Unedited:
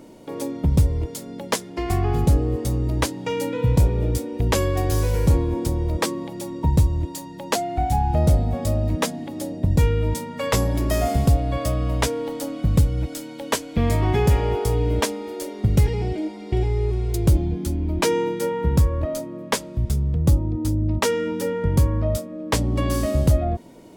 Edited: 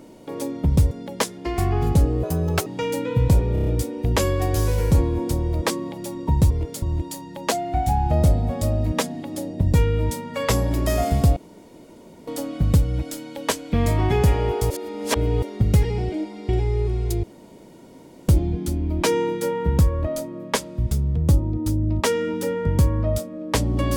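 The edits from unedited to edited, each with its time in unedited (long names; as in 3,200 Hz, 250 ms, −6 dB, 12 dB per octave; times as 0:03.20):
0:00.91–0:01.23: move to 0:06.86
0:02.55–0:03.14: play speed 136%
0:04.01: stutter 0.03 s, 5 plays
0:11.40–0:12.31: fill with room tone
0:14.74–0:15.46: reverse
0:17.27: splice in room tone 1.05 s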